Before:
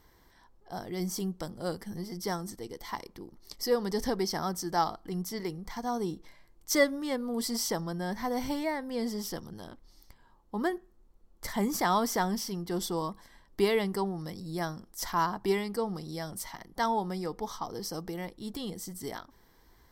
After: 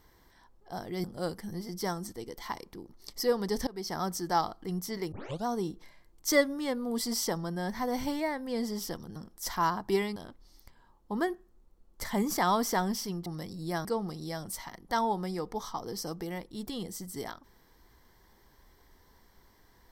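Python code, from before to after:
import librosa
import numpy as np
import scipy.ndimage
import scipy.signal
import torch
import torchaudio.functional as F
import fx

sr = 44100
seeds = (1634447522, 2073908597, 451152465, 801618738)

y = fx.edit(x, sr, fx.cut(start_s=1.04, length_s=0.43),
    fx.fade_in_from(start_s=4.1, length_s=0.35, floor_db=-21.5),
    fx.tape_start(start_s=5.55, length_s=0.34),
    fx.cut(start_s=12.69, length_s=1.44),
    fx.move(start_s=14.72, length_s=1.0, to_s=9.59), tone=tone)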